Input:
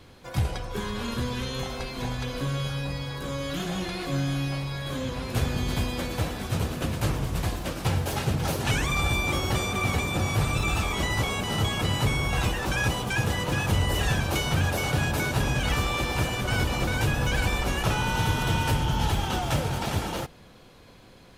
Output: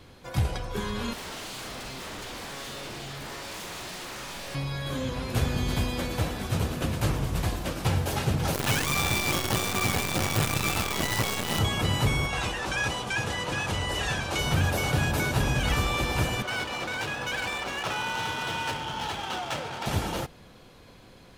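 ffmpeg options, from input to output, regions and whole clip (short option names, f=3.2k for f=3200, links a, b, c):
-filter_complex "[0:a]asettb=1/sr,asplit=3[a][b][c];[a]atrim=end=1.134[d];[b]atrim=start=1.13:end=4.55,asetpts=PTS-STARTPTS,afade=t=in:d=0.004:c=qsin,afade=t=out:st=3.416:d=0.004:c=qsin,aeval=exprs='0.0188*(abs(mod(val(0)/0.0188+3,4)-2)-1)':c=same,asplit=2[e][f];[f]adelay=45,volume=-6dB[g];[e][g]amix=inputs=2:normalize=0,atrim=end_sample=150822[h];[c]atrim=start=4.546[i];[d][h]acrossfade=d=0.004:c1=hsin:c2=qsin[j];[j][i]acrossfade=d=0.004:c1=qsin:c2=hsin,asettb=1/sr,asplit=3[k][l][m];[k]atrim=end=8.544[n];[l]atrim=start=8.54:end=11.59,asetpts=PTS-STARTPTS,afade=t=in:d=0.004:c=qsin,afade=t=out:st=3.046:d=0.004:c=qsin,highpass=100,acrusher=bits=5:dc=4:mix=0:aa=0.000001[o];[m]atrim=start=11.586[p];[n][o]acrossfade=d=0.004:c1=hsin:c2=qsin[q];[q][p]acrossfade=d=0.004:c1=qsin:c2=hsin,asettb=1/sr,asplit=3[r][s][t];[r]atrim=end=12.264[u];[s]atrim=start=12.26:end=14.39,asetpts=PTS-STARTPTS,afade=t=in:d=0.004:c=qsin,afade=t=out:st=2.126:d=0.004:c=qsin,lowpass=8.9k,lowshelf=f=320:g=-9[v];[t]atrim=start=14.386[w];[u][v]acrossfade=d=0.004:c1=hsin:c2=qsin[x];[x][w]acrossfade=d=0.004:c1=qsin:c2=hsin,asettb=1/sr,asplit=3[y][z][aa];[y]atrim=end=16.424[ab];[z]atrim=start=16.42:end=19.86,asetpts=PTS-STARTPTS,afade=t=in:d=0.004:c=qsin,afade=t=out:st=3.436:d=0.004:c=qsin,adynamicsmooth=sensitivity=7.5:basefreq=3.1k,highpass=f=700:p=1[ac];[aa]atrim=start=19.856[ad];[ab][ac]acrossfade=d=0.004:c1=hsin:c2=qsin[ae];[ae][ad]acrossfade=d=0.004:c1=qsin:c2=hsin"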